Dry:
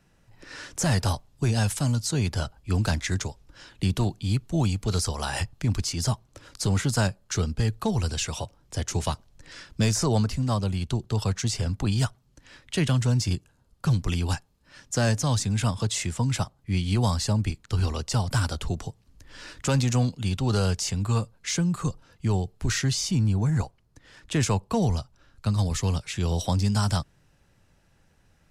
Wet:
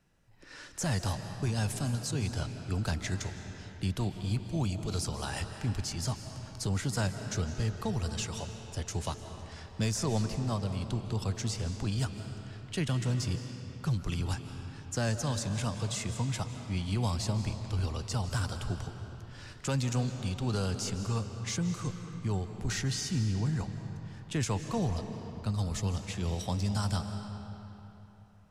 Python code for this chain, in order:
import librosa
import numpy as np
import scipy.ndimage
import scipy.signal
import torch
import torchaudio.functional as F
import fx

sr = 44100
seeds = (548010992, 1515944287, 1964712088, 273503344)

y = fx.rev_freeverb(x, sr, rt60_s=3.5, hf_ratio=0.7, predelay_ms=115, drr_db=7.0)
y = F.gain(torch.from_numpy(y), -7.5).numpy()